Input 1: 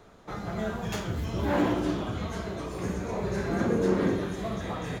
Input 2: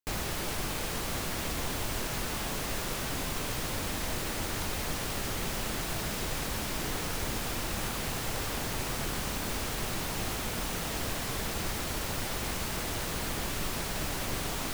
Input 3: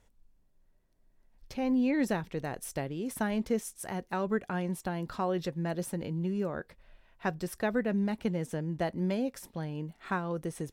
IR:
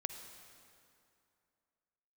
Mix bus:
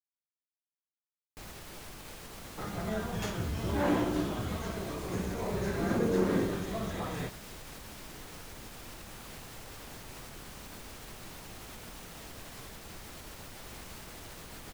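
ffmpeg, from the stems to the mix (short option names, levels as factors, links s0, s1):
-filter_complex "[0:a]adelay=2300,volume=0.708[s0];[1:a]alimiter=level_in=1.19:limit=0.0631:level=0:latency=1:release=111,volume=0.841,adelay=1300,volume=0.299[s1];[s0][s1]amix=inputs=2:normalize=0"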